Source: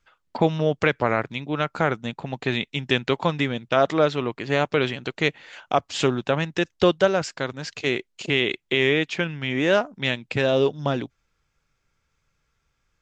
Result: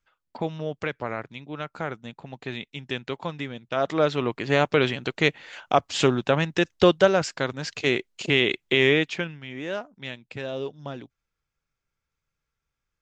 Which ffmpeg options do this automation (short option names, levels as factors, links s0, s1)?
-af "volume=1.12,afade=t=in:st=3.67:d=0.63:silence=0.316228,afade=t=out:st=8.93:d=0.49:silence=0.237137"